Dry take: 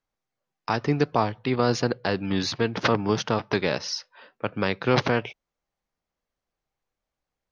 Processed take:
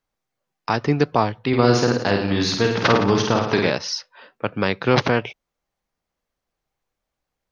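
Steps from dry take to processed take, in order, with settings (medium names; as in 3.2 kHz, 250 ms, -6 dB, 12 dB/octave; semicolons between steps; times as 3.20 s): 1.48–3.70 s: reverse bouncing-ball echo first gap 50 ms, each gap 1.1×, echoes 5; trim +4 dB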